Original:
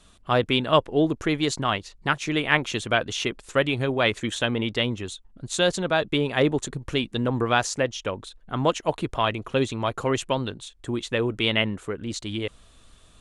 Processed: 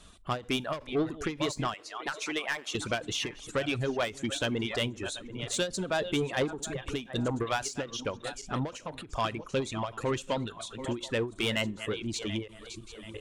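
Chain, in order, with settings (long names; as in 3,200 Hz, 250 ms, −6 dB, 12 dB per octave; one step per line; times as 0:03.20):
feedback delay that plays each chunk backwards 366 ms, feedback 55%, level −12.5 dB
0:01.74–0:02.75: high-pass filter 450 Hz 12 dB per octave
reverb reduction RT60 0.85 s
in parallel at −1 dB: downward compressor, threshold −36 dBFS, peak gain reduction 21 dB
on the sum: soft clipping −17.5 dBFS, distortion −11 dB
on a send at −23 dB: high-shelf EQ 5,100 Hz +11 dB + convolution reverb RT60 0.40 s, pre-delay 3 ms
on the sum: every ending faded ahead of time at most 190 dB per second
level −4 dB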